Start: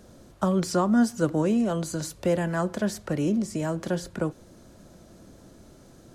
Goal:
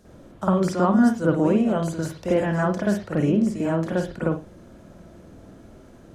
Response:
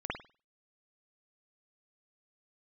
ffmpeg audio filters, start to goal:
-filter_complex "[0:a]asettb=1/sr,asplit=3[a][b][c];[a]atrim=end=2.164[d];[b]atrim=start=2.16:end=2.82,asetpts=PTS-STARTPTS,afade=t=in:d=0.004:c=qsin,afade=t=out:st=0.656:d=0.004:c=qsin,equalizer=f=5.6k:w=3.3:g=8.5[e];[c]atrim=start=2.816[f];[d][e]acrossfade=d=0.004:c1=hsin:c2=qsin[g];[g][f]acrossfade=d=0.004:c1=qsin:c2=hsin[h];[1:a]atrim=start_sample=2205,atrim=end_sample=6615[i];[h][i]afir=irnorm=-1:irlink=0"

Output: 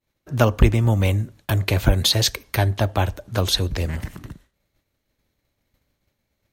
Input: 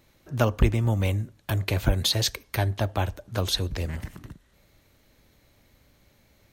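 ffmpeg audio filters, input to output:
-af "agate=range=-33dB:threshold=-48dB:ratio=3:detection=peak,volume=5.5dB"

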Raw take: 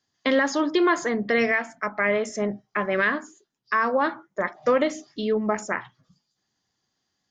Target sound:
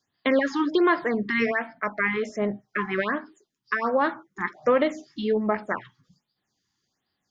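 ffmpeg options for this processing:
-filter_complex "[0:a]acrossover=split=4400[a][b];[b]acompressor=threshold=-55dB:ratio=4:attack=1:release=60[c];[a][c]amix=inputs=2:normalize=0,afftfilt=real='re*(1-between(b*sr/1024,520*pow(7500/520,0.5+0.5*sin(2*PI*1.3*pts/sr))/1.41,520*pow(7500/520,0.5+0.5*sin(2*PI*1.3*pts/sr))*1.41))':imag='im*(1-between(b*sr/1024,520*pow(7500/520,0.5+0.5*sin(2*PI*1.3*pts/sr))/1.41,520*pow(7500/520,0.5+0.5*sin(2*PI*1.3*pts/sr))*1.41))':win_size=1024:overlap=0.75"

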